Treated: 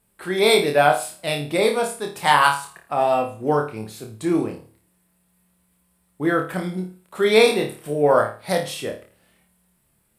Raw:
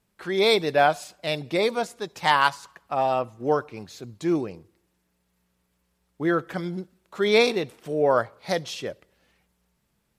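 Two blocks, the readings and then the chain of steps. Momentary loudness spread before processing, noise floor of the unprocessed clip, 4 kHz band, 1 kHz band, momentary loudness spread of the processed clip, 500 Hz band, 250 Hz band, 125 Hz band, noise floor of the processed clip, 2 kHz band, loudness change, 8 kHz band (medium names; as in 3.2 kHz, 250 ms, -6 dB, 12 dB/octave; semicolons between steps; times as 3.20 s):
16 LU, -73 dBFS, +3.0 dB, +4.0 dB, 14 LU, +4.0 dB, +3.5 dB, +4.5 dB, -66 dBFS, +4.0 dB, +4.0 dB, +9.0 dB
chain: resonant high shelf 7.5 kHz +6 dB, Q 3; flutter echo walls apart 4.7 m, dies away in 0.36 s; trim +2.5 dB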